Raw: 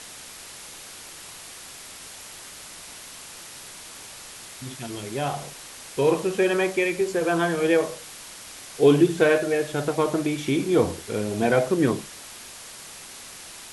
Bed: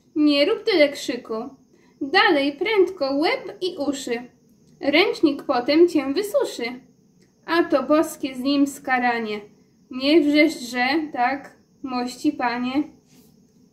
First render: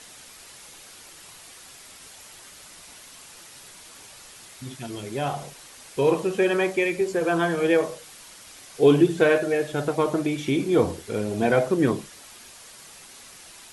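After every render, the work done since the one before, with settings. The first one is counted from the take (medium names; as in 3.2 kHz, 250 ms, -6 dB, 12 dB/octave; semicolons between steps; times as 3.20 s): noise reduction 6 dB, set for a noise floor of -42 dBFS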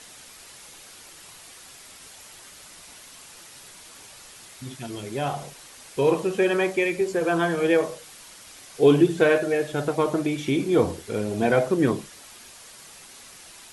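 no audible change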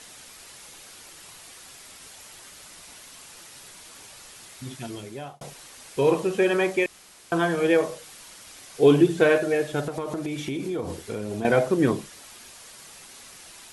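4.84–5.41 s: fade out; 6.86–7.32 s: room tone; 9.80–11.45 s: compression, threshold -26 dBFS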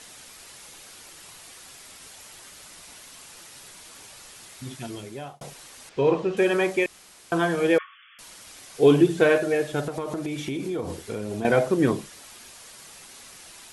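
5.89–6.37 s: distance through air 150 m; 7.78–8.19 s: brick-wall FIR band-pass 1.1–3.5 kHz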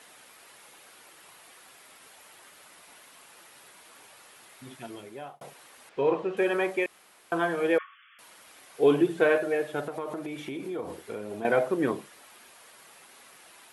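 high-pass 520 Hz 6 dB/octave; peaking EQ 6.2 kHz -12.5 dB 1.9 oct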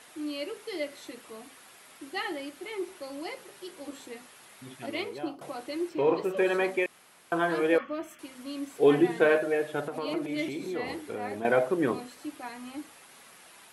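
add bed -17.5 dB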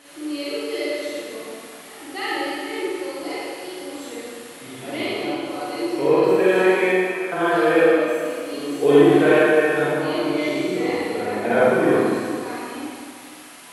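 reverse echo 316 ms -20.5 dB; Schroeder reverb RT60 2.1 s, DRR -9.5 dB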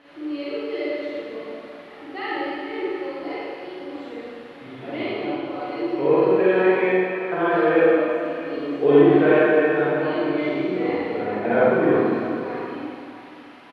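distance through air 330 m; delay 639 ms -14 dB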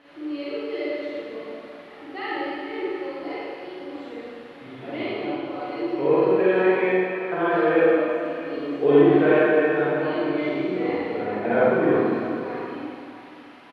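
trim -1.5 dB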